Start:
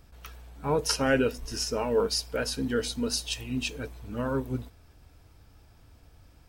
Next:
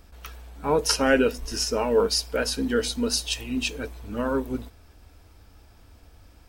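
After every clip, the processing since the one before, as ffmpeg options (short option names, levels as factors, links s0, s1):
-af "equalizer=f=130:t=o:w=0.33:g=-15,volume=1.68"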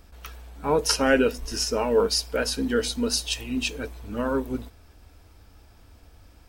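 -af anull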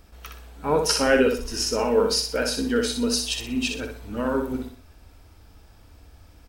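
-af "aecho=1:1:62|124|186|248:0.531|0.186|0.065|0.0228"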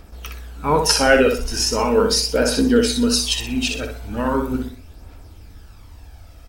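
-af "aphaser=in_gain=1:out_gain=1:delay=1.6:decay=0.41:speed=0.39:type=triangular,volume=1.78"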